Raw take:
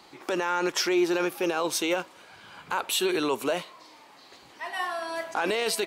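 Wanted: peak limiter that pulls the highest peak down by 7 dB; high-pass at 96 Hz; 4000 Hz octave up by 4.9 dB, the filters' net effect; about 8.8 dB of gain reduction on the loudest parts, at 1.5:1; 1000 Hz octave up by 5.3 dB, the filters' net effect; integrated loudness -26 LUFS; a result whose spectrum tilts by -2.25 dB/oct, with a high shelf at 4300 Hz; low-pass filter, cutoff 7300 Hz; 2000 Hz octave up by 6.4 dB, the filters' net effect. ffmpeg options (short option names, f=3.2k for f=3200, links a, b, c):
-af "highpass=96,lowpass=7.3k,equalizer=f=1k:t=o:g=5,equalizer=f=2k:t=o:g=6,equalizer=f=4k:t=o:g=7,highshelf=f=4.3k:g=-5,acompressor=threshold=-44dB:ratio=1.5,volume=8.5dB,alimiter=limit=-15.5dB:level=0:latency=1"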